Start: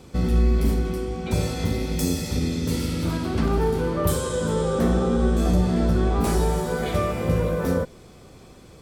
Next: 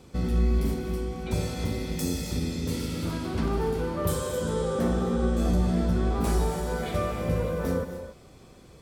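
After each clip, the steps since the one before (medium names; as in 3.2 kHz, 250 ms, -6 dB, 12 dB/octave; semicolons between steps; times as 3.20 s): gated-style reverb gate 300 ms rising, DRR 9 dB; trim -5 dB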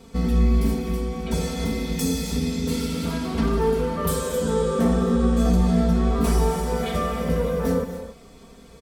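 comb 4.4 ms, depth 94%; trim +2 dB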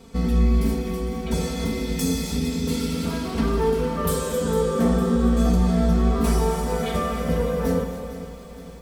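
bit-crushed delay 456 ms, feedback 55%, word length 8-bit, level -13 dB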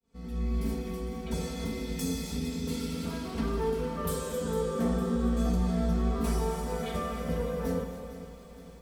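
fade-in on the opening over 0.73 s; trim -8.5 dB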